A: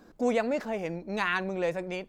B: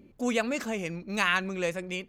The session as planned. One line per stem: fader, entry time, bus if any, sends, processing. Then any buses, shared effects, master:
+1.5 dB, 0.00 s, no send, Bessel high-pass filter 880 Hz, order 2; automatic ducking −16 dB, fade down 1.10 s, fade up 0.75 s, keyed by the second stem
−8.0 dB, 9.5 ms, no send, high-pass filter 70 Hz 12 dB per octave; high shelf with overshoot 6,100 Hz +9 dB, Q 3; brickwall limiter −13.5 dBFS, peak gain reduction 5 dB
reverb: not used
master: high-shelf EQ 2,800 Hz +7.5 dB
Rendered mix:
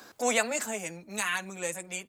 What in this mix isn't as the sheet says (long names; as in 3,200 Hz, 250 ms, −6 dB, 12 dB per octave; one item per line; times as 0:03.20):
stem A +1.5 dB → +10.5 dB
stem B: polarity flipped